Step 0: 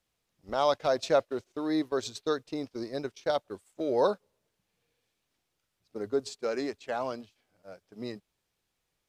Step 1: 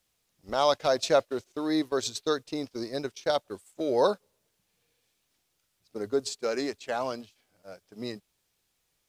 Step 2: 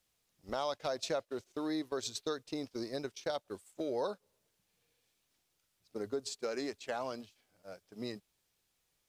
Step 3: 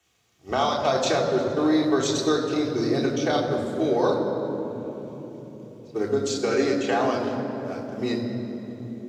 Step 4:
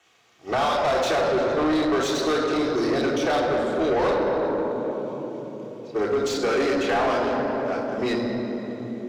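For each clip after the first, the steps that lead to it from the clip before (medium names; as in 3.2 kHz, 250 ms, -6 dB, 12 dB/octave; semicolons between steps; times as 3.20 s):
treble shelf 3.7 kHz +7.5 dB; trim +1.5 dB
compression 3:1, threshold -31 dBFS, peak gain reduction 10.5 dB; trim -3.5 dB
reverberation RT60 4.0 s, pre-delay 3 ms, DRR -3 dB; trim +2.5 dB
overdrive pedal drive 25 dB, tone 2 kHz, clips at -8 dBFS; trim -6 dB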